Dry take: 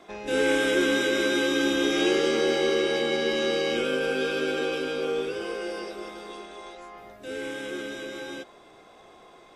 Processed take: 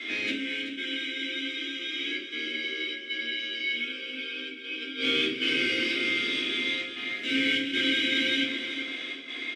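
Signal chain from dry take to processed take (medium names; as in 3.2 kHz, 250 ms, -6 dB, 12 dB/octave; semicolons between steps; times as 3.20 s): tilt shelf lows -7 dB, about 810 Hz; inverted gate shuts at -19 dBFS, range -26 dB; overdrive pedal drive 24 dB, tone 6.4 kHz, clips at -18.5 dBFS; vowel filter i; trance gate "xxxx.xxxxxxxxx." 97 bpm -12 dB; feedback delay 382 ms, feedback 35%, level -10 dB; simulated room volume 270 m³, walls furnished, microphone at 4.1 m; trim +6.5 dB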